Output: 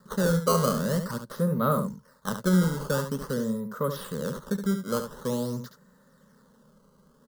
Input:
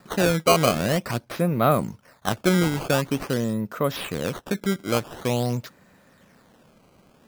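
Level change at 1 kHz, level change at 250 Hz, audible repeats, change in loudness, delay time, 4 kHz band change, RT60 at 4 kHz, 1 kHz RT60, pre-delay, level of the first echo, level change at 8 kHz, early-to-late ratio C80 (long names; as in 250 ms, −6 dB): −5.5 dB, −2.0 dB, 1, −4.0 dB, 71 ms, −9.0 dB, no reverb audible, no reverb audible, no reverb audible, −8.0 dB, −4.5 dB, no reverb audible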